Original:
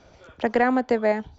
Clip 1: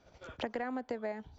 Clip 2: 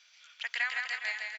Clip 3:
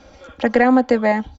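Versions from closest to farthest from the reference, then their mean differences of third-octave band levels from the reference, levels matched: 3, 1, 2; 2.0 dB, 4.0 dB, 15.0 dB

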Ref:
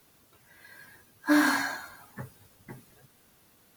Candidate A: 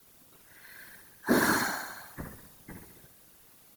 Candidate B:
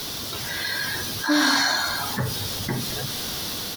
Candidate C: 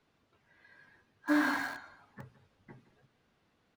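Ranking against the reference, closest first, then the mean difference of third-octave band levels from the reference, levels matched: C, A, B; 4.5 dB, 5.5 dB, 15.5 dB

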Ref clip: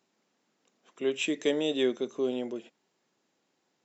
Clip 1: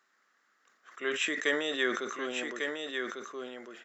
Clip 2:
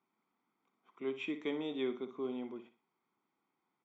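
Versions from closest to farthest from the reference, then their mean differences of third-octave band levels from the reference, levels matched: 2, 1; 4.0 dB, 7.0 dB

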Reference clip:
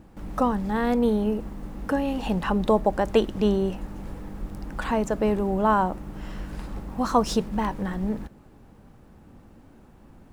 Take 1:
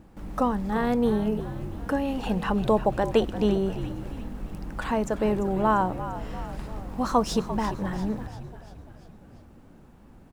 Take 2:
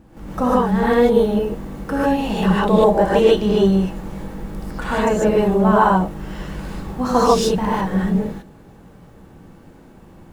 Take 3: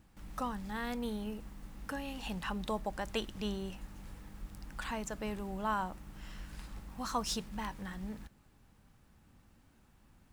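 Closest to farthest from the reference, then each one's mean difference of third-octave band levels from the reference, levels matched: 1, 2, 3; 2.5 dB, 4.0 dB, 5.5 dB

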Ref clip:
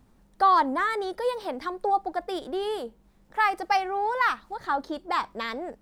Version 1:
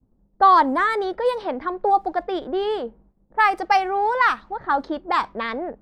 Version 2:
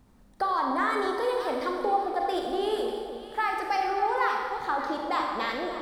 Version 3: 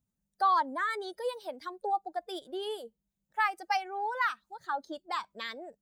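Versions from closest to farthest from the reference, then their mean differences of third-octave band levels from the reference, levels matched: 1, 3, 2; 2.0 dB, 5.5 dB, 7.5 dB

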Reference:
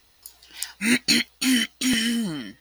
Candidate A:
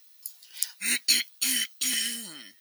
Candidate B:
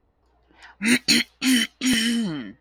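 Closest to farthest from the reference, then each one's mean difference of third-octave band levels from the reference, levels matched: B, A; 3.5 dB, 7.0 dB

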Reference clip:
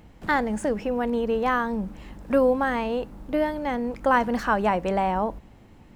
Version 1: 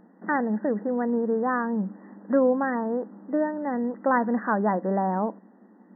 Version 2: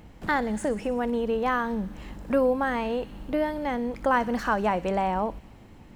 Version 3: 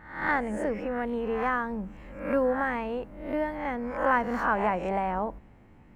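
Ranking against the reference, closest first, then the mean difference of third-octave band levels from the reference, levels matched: 2, 3, 1; 2.0 dB, 4.0 dB, 8.0 dB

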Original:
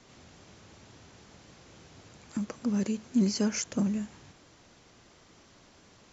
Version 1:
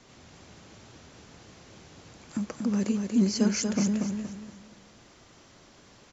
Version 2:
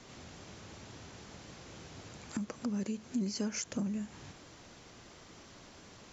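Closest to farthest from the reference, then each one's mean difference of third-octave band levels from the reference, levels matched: 1, 2; 2.0 dB, 7.0 dB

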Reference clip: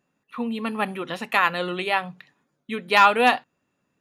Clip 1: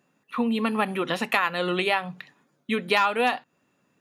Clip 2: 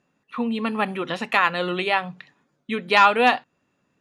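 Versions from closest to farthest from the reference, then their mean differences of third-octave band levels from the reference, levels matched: 2, 1; 2.0 dB, 4.0 dB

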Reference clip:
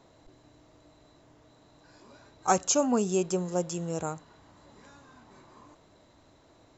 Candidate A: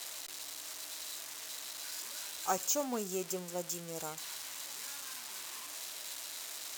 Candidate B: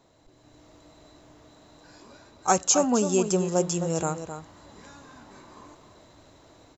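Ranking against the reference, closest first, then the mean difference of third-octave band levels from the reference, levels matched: B, A; 2.5 dB, 17.0 dB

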